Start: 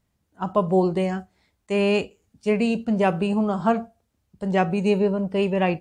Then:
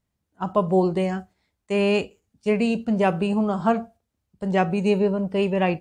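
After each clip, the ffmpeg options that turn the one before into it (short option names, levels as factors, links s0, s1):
-af "agate=range=0.501:threshold=0.00562:ratio=16:detection=peak"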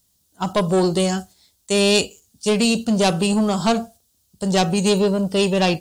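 -af "asoftclip=type=tanh:threshold=0.15,aexciter=amount=6.3:drive=6:freq=3200,volume=1.78"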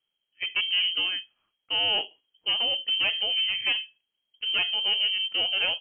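-af "lowpass=f=2800:t=q:w=0.5098,lowpass=f=2800:t=q:w=0.6013,lowpass=f=2800:t=q:w=0.9,lowpass=f=2800:t=q:w=2.563,afreqshift=-3300,volume=0.398"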